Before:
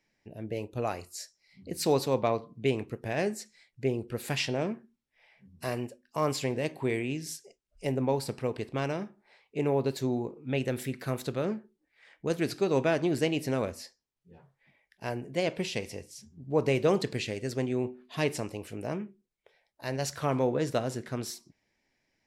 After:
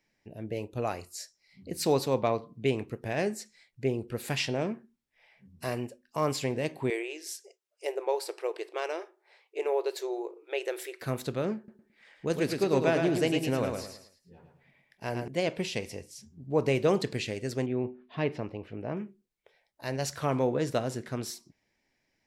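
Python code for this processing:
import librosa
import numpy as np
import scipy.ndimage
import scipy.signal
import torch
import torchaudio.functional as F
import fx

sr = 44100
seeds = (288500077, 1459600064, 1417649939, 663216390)

y = fx.brickwall_highpass(x, sr, low_hz=320.0, at=(6.9, 11.02))
y = fx.echo_feedback(y, sr, ms=109, feedback_pct=35, wet_db=-5.0, at=(11.57, 15.28))
y = fx.air_absorb(y, sr, metres=320.0, at=(17.66, 18.97))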